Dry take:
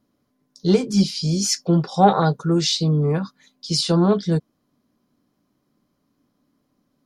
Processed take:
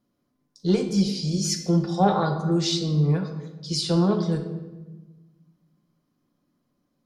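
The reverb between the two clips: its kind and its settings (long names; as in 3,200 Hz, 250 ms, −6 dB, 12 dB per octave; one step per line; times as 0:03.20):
rectangular room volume 730 cubic metres, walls mixed, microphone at 0.89 metres
level −6 dB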